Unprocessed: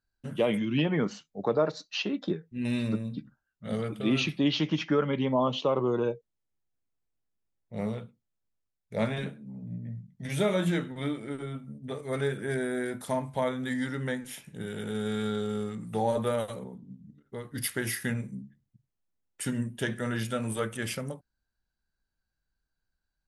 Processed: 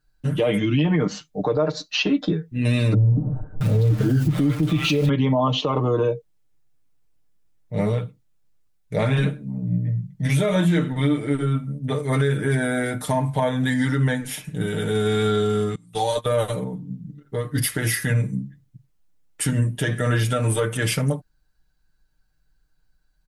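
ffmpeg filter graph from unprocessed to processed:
-filter_complex "[0:a]asettb=1/sr,asplit=3[a][b][c];[a]atrim=end=2.944[d];[b]atrim=start=2.94:end=5.09,asetpts=PTS-STARTPTS,afade=t=in:d=0.004:c=qsin,afade=t=out:st=2.146:d=0.004:c=qsin,aeval=exprs='val(0)+0.5*0.015*sgn(val(0))':c=same,equalizer=f=110:t=o:w=0.46:g=11,acrossover=split=720[e][f];[f]adelay=670[g];[e][g]amix=inputs=2:normalize=0,atrim=end_sample=94815[h];[c]atrim=start=5.086[i];[d][h]acrossfade=d=0.004:c1=hsin:c2=qsin[j];[j][i]acrossfade=d=0.004:c1=qsin:c2=hsin,asettb=1/sr,asplit=3[k][l][m];[k]atrim=end=15.754[n];[l]atrim=start=15.75:end=16.26,asetpts=PTS-STARTPTS,afade=t=in:d=0.004:c=qsin,afade=t=out:st=0.506:d=0.004:c=qsin,highshelf=f=2.5k:t=q:w=1.5:g=8.5,acrossover=split=680|6700[o][p][q];[o]acompressor=threshold=-41dB:ratio=4[r];[p]acompressor=threshold=-33dB:ratio=4[s];[q]acompressor=threshold=-51dB:ratio=4[t];[r][s][t]amix=inputs=3:normalize=0,agate=range=-21dB:threshold=-37dB:ratio=16:release=100:detection=peak[u];[m]atrim=start=16.256[v];[n][u]acrossfade=d=0.004:c1=hsin:c2=qsin[w];[w][v]acrossfade=d=0.004:c1=qsin:c2=hsin,lowshelf=f=130:g=8,aecho=1:1:6.6:0.78,alimiter=limit=-20.5dB:level=0:latency=1:release=94,volume=8.5dB"

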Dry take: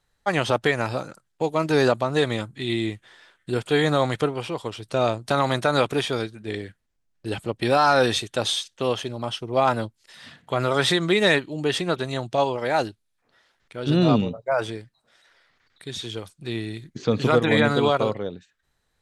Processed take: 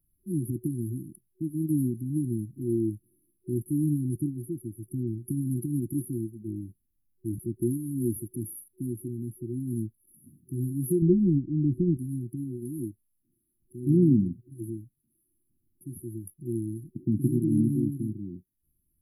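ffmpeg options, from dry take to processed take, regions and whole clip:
-filter_complex "[0:a]asettb=1/sr,asplit=3[a][b][c];[a]atrim=end=11.024[d];[b]atrim=start=11.02:end=11.97,asetpts=PTS-STARTPTS,afade=t=in:d=0.004:c=qsin,afade=t=out:st=0.946:d=0.004:c=qsin,lowpass=f=1.8k:p=1,aemphasis=mode=reproduction:type=bsi[e];[c]atrim=start=11.966[f];[d][e]acrossfade=d=0.004:c1=hsin:c2=qsin[g];[g][f]acrossfade=d=0.004:c1=qsin:c2=hsin,equalizer=f=5.3k:w=0.37:g=8,afftfilt=real='re*(1-between(b*sr/4096,370,10000))':imag='im*(1-between(b*sr/4096,370,10000))':win_size=4096:overlap=0.75,highshelf=f=7.4k:g=9,volume=-1dB"

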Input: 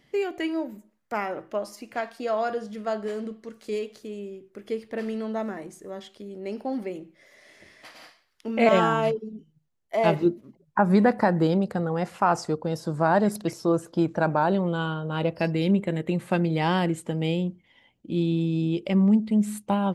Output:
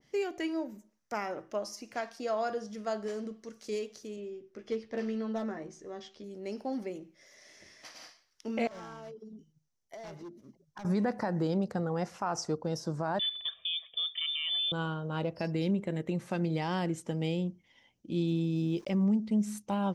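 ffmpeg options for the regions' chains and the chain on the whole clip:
-filter_complex "[0:a]asettb=1/sr,asplit=3[a][b][c];[a]atrim=end=4.164[d];[b]atrim=start=4.16:end=6.24,asetpts=PTS-STARTPTS,afade=t=in:d=0.004:c=qsin,afade=t=out:st=2.076:d=0.004:c=qsin,lowpass=4.6k,volume=22dB,asoftclip=hard,volume=-22dB,asplit=2[e][f];[f]adelay=13,volume=-7dB[g];[e][g]amix=inputs=2:normalize=0,atrim=end_sample=91728[h];[c]atrim=start=6.236[i];[d][h]acrossfade=d=0.004:c1=hsin:c2=qsin[j];[j][i]acrossfade=d=0.004:c1=qsin:c2=hsin,asettb=1/sr,asplit=3[k][l][m];[k]atrim=end=8.674[n];[l]atrim=start=8.67:end=10.85,asetpts=PTS-STARTPTS,afade=t=in:d=0.004:c=qsin,afade=t=out:st=2.176:d=0.004:c=qsin,volume=19.5dB,asoftclip=hard,volume=-19.5dB,bandreject=f=2.6k:w=16,acompressor=threshold=-38dB:ratio=8:attack=3.2:release=140:knee=1:detection=peak[o];[m]atrim=start=10.846[p];[n][o]acrossfade=d=0.004:c1=hsin:c2=qsin[q];[q][p]acrossfade=d=0.004:c1=qsin:c2=hsin,asettb=1/sr,asplit=3[r][s][t];[r]atrim=end=13.194[u];[s]atrim=start=13.19:end=14.72,asetpts=PTS-STARTPTS,afade=t=in:d=0.004:c=qsin,afade=t=out:st=1.526:d=0.004:c=qsin,lowpass=f=3.1k:t=q:w=0.5098,lowpass=f=3.1k:t=q:w=0.6013,lowpass=f=3.1k:t=q:w=0.9,lowpass=f=3.1k:t=q:w=2.563,afreqshift=-3700,aecho=1:1:1.7:0.98,atrim=end_sample=67473[v];[t]atrim=start=14.716[w];[u][v]acrossfade=d=0.004:c1=hsin:c2=qsin[x];[x][w]acrossfade=d=0.004:c1=qsin:c2=hsin,asettb=1/sr,asplit=3[y][z][aa];[y]atrim=end=18.284[ab];[z]atrim=start=18.28:end=19.05,asetpts=PTS-STARTPTS,afade=t=in:d=0.004:c=qsin,afade=t=out:st=0.766:d=0.004:c=qsin,bandreject=f=4.5k:w=20,aeval=exprs='val(0)*gte(abs(val(0)),0.00398)':c=same[ac];[aa]atrim=start=19.046[ad];[ab][ac]acrossfade=d=0.004:c1=hsin:c2=qsin[ae];[ae][ad]acrossfade=d=0.004:c1=qsin:c2=hsin,equalizer=f=5.8k:t=o:w=0.51:g=14,alimiter=limit=-16dB:level=0:latency=1:release=109,adynamicequalizer=threshold=0.00631:dfrequency=1900:dqfactor=0.7:tfrequency=1900:tqfactor=0.7:attack=5:release=100:ratio=0.375:range=2:mode=cutabove:tftype=highshelf,volume=-5.5dB"

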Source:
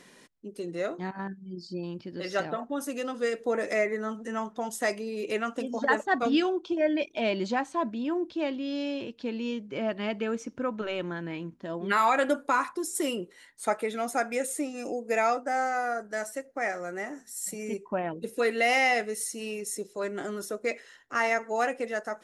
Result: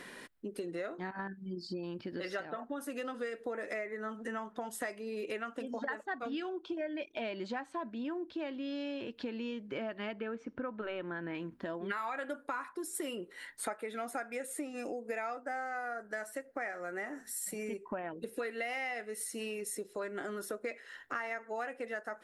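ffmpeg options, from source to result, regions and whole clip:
-filter_complex "[0:a]asettb=1/sr,asplit=3[a][b][c];[a]atrim=end=10.134[d];[b]atrim=start=10.13:end=11.35,asetpts=PTS-STARTPTS,afade=t=in:d=0.004:c=qsin,afade=t=out:st=1.216:d=0.004:c=qsin,lowpass=6.3k,highshelf=f=3.7k:g=-10.5[e];[c]atrim=start=11.346[f];[d][e]acrossfade=d=0.004:c1=hsin:c2=qsin[g];[g][f]acrossfade=d=0.004:c1=qsin:c2=hsin,equalizer=f=160:t=o:w=0.67:g=-5,equalizer=f=1.6k:t=o:w=0.67:g=5,equalizer=f=6.3k:t=o:w=0.67:g=-8,acompressor=threshold=-42dB:ratio=6,volume=5dB"

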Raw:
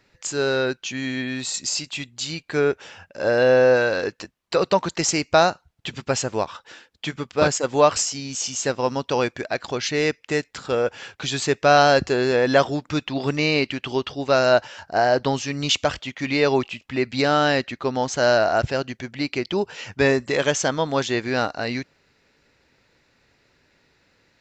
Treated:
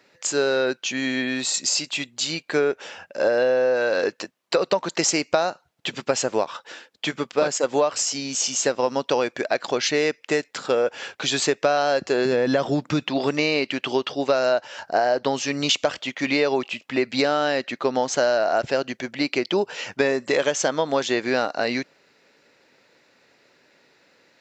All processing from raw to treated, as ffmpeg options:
-filter_complex "[0:a]asettb=1/sr,asplit=3[a][b][c];[a]atrim=end=12.254[d];[b]atrim=start=12.25:end=13.1,asetpts=PTS-STARTPTS,afade=t=in:d=0.004:c=qsin,afade=t=out:st=0.846:d=0.004:c=qsin,highpass=56,bass=f=250:g=11,treble=f=4k:g=0,acompressor=threshold=-15dB:ratio=6:attack=3.2:release=140:knee=1:detection=peak[e];[c]atrim=start=13.096[f];[d][e]acrossfade=d=0.004:c1=hsin:c2=qsin[g];[g][f]acrossfade=d=0.004:c1=qsin:c2=hsin,highpass=220,equalizer=f=570:t=o:w=0.63:g=3.5,acompressor=threshold=-20dB:ratio=10,volume=3.5dB"

